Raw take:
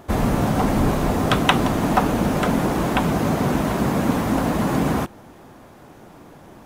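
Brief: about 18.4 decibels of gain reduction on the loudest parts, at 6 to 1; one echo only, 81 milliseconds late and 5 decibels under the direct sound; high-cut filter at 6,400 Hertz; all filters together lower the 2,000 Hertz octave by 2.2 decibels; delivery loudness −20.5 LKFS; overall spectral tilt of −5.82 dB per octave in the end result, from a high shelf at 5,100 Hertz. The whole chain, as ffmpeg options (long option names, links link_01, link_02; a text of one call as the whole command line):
ffmpeg -i in.wav -af "lowpass=6400,equalizer=frequency=2000:width_type=o:gain=-4,highshelf=frequency=5100:gain=7,acompressor=threshold=-33dB:ratio=6,aecho=1:1:81:0.562,volume=14.5dB" out.wav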